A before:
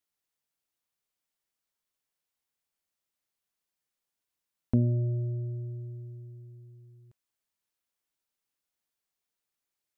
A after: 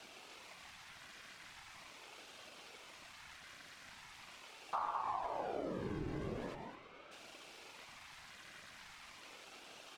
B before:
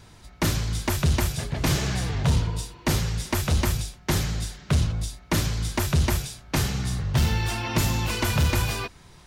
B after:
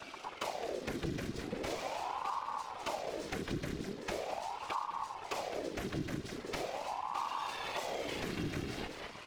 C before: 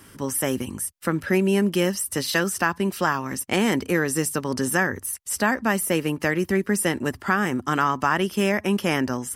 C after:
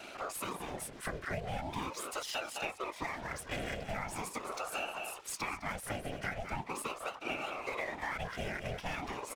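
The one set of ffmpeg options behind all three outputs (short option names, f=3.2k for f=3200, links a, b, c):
-filter_complex "[0:a]aeval=exprs='val(0)+0.5*0.02*sgn(val(0))':c=same,acrossover=split=250|770|2200[a][b][c][d];[a]acrusher=bits=5:mix=0:aa=0.000001[e];[c]highpass=f=1.5k:t=q:w=2[f];[e][b][f][d]amix=inputs=4:normalize=0,aecho=1:1:2.3:0.43,adynamicsmooth=sensitivity=5.5:basefreq=3.1k,aecho=1:1:207:0.299,afftfilt=real='hypot(re,im)*cos(2*PI*random(0))':imag='hypot(re,im)*sin(2*PI*random(1))':win_size=512:overlap=0.75,acompressor=threshold=-38dB:ratio=3,aeval=exprs='val(0)*sin(2*PI*620*n/s+620*0.65/0.41*sin(2*PI*0.41*n/s))':c=same,volume=2dB"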